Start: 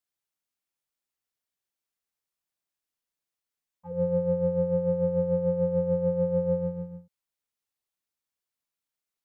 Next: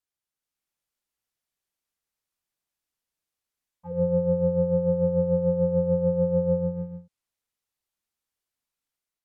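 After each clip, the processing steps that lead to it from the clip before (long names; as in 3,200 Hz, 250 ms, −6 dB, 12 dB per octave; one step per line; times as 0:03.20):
treble cut that deepens with the level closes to 1,300 Hz, closed at −25.5 dBFS
low-shelf EQ 98 Hz +6 dB
automatic gain control gain up to 4.5 dB
level −2.5 dB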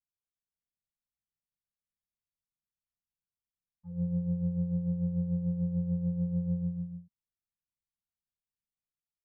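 drawn EQ curve 210 Hz 0 dB, 350 Hz −25 dB, 580 Hz −21 dB
level −3.5 dB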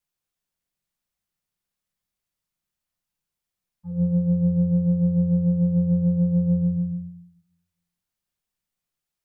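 convolution reverb RT60 0.55 s, pre-delay 6 ms, DRR 7.5 dB
level +9 dB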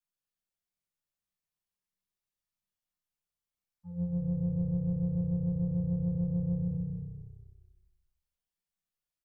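stylus tracing distortion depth 0.052 ms
tuned comb filter 96 Hz, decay 0.53 s, harmonics all, mix 80%
on a send: echo with shifted repeats 224 ms, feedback 43%, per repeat −32 Hz, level −7.5 dB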